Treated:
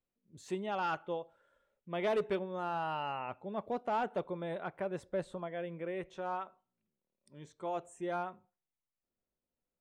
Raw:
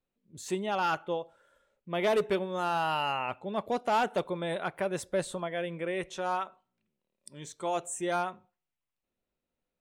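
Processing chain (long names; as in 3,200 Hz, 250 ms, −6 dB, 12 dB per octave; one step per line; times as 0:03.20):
low-pass filter 3,100 Hz 6 dB per octave, from 0:02.39 1,400 Hz
level −5 dB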